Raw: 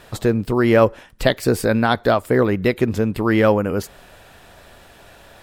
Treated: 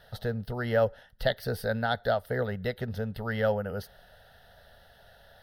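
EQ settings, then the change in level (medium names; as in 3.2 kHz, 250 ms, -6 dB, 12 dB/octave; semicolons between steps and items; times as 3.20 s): static phaser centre 1.6 kHz, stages 8; -8.5 dB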